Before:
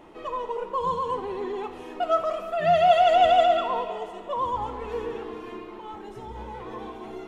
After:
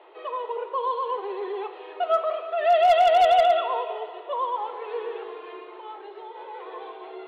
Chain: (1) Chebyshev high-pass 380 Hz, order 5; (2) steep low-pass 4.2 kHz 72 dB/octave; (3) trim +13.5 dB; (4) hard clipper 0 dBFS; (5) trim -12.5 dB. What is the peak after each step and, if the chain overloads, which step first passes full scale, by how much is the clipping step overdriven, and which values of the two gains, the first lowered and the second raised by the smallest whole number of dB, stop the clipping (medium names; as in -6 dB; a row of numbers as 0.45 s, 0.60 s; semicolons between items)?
-8.5 dBFS, -8.5 dBFS, +5.0 dBFS, 0.0 dBFS, -12.5 dBFS; step 3, 5.0 dB; step 3 +8.5 dB, step 5 -7.5 dB